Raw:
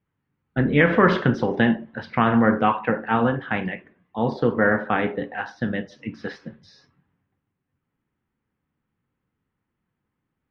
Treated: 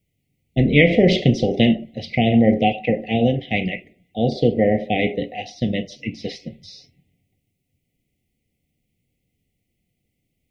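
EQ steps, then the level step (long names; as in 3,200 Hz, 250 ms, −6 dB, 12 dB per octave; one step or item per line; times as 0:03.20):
Chebyshev band-stop filter 750–2,000 Hz, order 5
low-shelf EQ 83 Hz +9 dB
high-shelf EQ 2,200 Hz +11.5 dB
+3.0 dB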